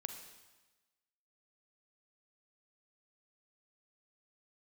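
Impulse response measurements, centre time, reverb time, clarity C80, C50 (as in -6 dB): 26 ms, 1.2 s, 8.5 dB, 7.0 dB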